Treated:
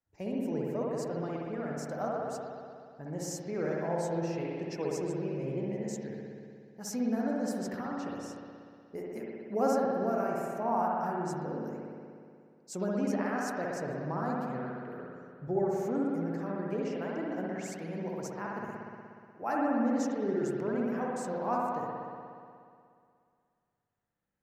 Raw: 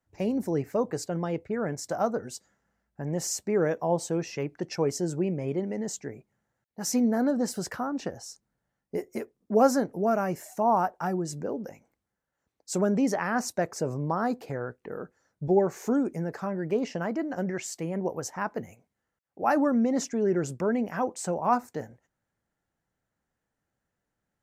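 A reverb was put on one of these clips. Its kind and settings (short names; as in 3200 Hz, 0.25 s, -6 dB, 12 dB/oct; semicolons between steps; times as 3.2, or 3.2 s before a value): spring tank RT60 2.3 s, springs 60 ms, chirp 65 ms, DRR -3.5 dB; gain -10 dB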